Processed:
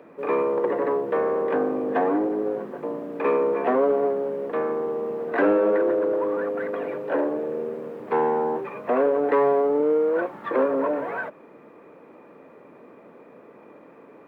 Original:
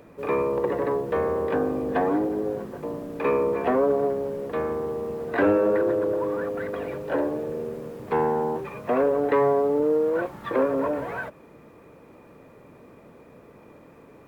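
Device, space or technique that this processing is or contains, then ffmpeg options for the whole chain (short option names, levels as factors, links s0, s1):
parallel distortion: -filter_complex "[0:a]asplit=2[s0][s1];[s1]asoftclip=type=hard:threshold=0.0531,volume=0.376[s2];[s0][s2]amix=inputs=2:normalize=0,acrossover=split=190 2800:gain=0.0708 1 0.2[s3][s4][s5];[s3][s4][s5]amix=inputs=3:normalize=0"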